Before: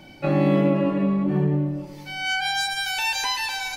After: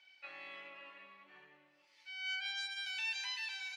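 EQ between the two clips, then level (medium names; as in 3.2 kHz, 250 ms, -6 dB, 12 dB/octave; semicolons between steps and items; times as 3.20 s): ladder band-pass 2.9 kHz, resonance 20%; -2.0 dB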